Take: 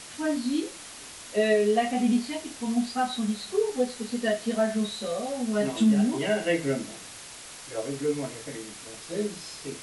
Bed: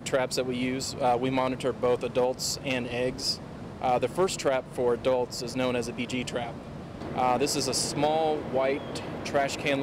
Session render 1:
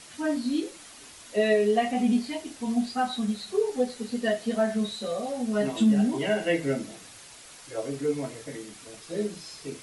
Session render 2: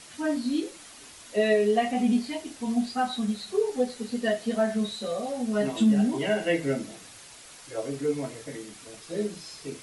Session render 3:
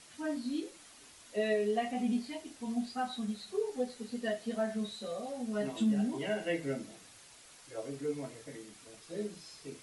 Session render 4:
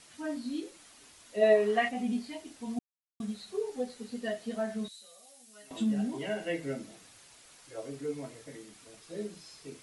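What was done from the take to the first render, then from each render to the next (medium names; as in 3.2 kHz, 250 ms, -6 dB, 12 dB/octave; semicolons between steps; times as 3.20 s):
noise reduction 6 dB, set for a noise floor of -44 dBFS
no audible change
trim -8.5 dB
1.41–1.88 s: peaking EQ 620 Hz -> 1.9 kHz +14.5 dB 1.5 oct; 2.79–3.20 s: mute; 4.88–5.71 s: pre-emphasis filter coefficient 0.97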